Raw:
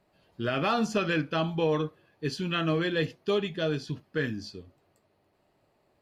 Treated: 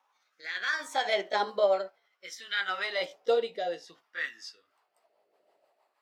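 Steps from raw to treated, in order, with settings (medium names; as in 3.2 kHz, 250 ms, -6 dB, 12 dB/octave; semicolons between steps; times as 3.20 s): pitch bend over the whole clip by +5.5 st ending unshifted; LFO high-pass sine 0.51 Hz 520–1500 Hz; rotary cabinet horn 0.6 Hz, later 6.3 Hz, at 4.24 s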